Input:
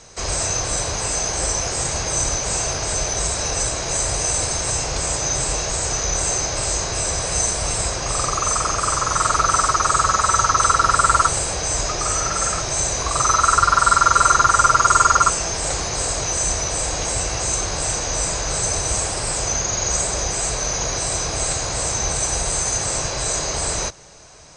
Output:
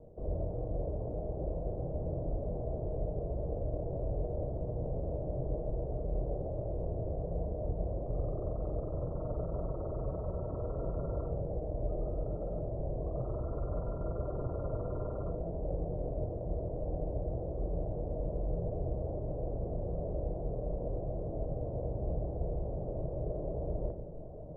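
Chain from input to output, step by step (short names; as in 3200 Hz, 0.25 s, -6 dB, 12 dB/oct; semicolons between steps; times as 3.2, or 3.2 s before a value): Chebyshev low-pass 620 Hz, order 4; reverse; upward compressor, threshold -26 dBFS; reverse; shoebox room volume 170 m³, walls mixed, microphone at 0.51 m; gain -9 dB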